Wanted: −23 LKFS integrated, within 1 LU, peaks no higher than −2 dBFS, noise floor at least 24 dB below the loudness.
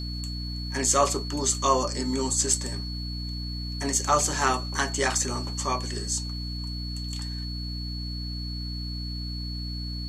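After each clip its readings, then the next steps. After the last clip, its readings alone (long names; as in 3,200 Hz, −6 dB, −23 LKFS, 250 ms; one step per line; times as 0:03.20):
mains hum 60 Hz; hum harmonics up to 300 Hz; level of the hum −31 dBFS; interfering tone 4,400 Hz; level of the tone −37 dBFS; integrated loudness −27.5 LKFS; sample peak −8.0 dBFS; target loudness −23.0 LKFS
→ hum removal 60 Hz, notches 5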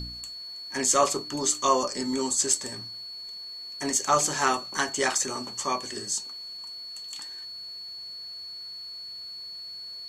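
mains hum none found; interfering tone 4,400 Hz; level of the tone −37 dBFS
→ notch filter 4,400 Hz, Q 30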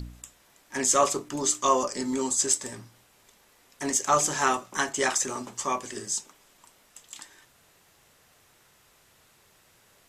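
interfering tone none found; integrated loudness −26.0 LKFS; sample peak −8.0 dBFS; target loudness −23.0 LKFS
→ level +3 dB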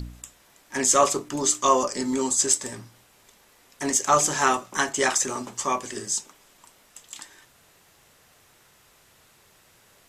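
integrated loudness −23.0 LKFS; sample peak −5.0 dBFS; background noise floor −58 dBFS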